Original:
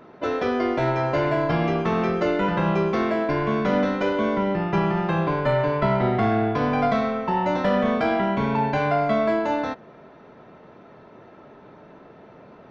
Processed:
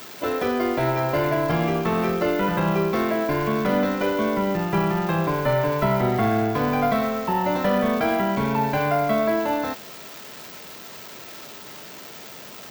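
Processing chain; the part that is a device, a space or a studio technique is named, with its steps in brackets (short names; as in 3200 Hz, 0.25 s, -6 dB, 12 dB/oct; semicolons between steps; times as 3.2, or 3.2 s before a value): budget class-D amplifier (switching dead time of 0.054 ms; switching spikes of -23 dBFS)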